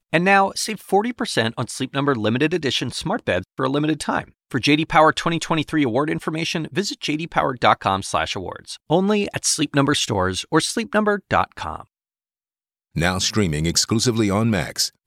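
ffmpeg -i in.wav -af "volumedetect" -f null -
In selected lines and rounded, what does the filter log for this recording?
mean_volume: -21.1 dB
max_volume: -2.2 dB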